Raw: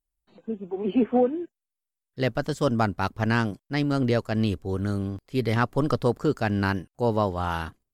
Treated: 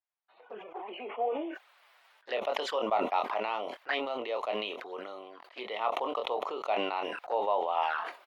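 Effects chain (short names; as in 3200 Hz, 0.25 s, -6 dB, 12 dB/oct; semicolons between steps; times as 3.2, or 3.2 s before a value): air absorption 370 m; envelope flanger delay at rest 9.3 ms, full sweep at -24 dBFS; compressor 3:1, threshold -26 dBFS, peak gain reduction 6.5 dB; HPF 700 Hz 24 dB/oct; doubler 23 ms -10 dB; speed mistake 25 fps video run at 24 fps; sustainer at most 38 dB/s; gain +8 dB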